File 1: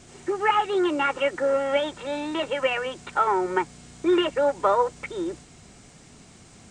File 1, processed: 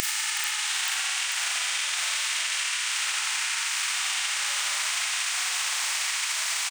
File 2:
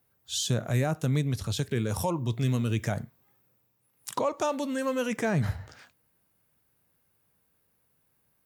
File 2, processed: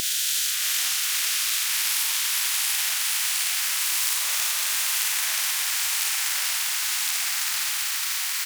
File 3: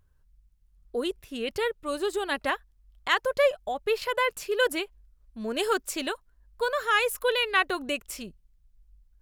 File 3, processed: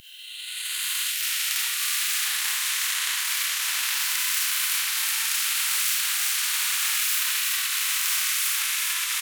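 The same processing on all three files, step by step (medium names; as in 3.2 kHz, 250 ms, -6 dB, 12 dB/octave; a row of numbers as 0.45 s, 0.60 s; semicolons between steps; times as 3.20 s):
reverse spectral sustain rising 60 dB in 1.29 s; on a send: frequency-shifting echo 372 ms, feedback 40%, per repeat +57 Hz, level -8 dB; on the sum: Schroeder reverb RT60 0.44 s, combs from 26 ms, DRR -2.5 dB; ever faster or slower copies 440 ms, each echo -2 st, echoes 3; steep high-pass 2 kHz 36 dB/octave; treble shelf 9.3 kHz +4.5 dB; transient shaper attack +4 dB, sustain -3 dB; compression 2.5:1, threshold -32 dBFS; spectrum-flattening compressor 4:1; peak normalisation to -6 dBFS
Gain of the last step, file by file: +11.5 dB, +10.0 dB, +10.0 dB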